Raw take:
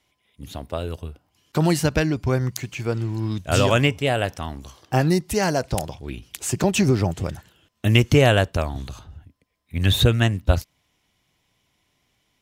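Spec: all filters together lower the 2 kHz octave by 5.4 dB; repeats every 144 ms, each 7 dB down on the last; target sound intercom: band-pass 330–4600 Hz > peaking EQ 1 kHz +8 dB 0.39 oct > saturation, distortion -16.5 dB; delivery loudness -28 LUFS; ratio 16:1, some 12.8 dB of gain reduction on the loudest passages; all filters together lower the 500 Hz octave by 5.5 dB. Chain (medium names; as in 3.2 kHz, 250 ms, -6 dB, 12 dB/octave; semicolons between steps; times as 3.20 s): peaking EQ 500 Hz -6 dB; peaking EQ 2 kHz -7.5 dB; compression 16:1, threshold -25 dBFS; band-pass 330–4600 Hz; peaking EQ 1 kHz +8 dB 0.39 oct; feedback delay 144 ms, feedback 45%, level -7 dB; saturation -23.5 dBFS; trim +9 dB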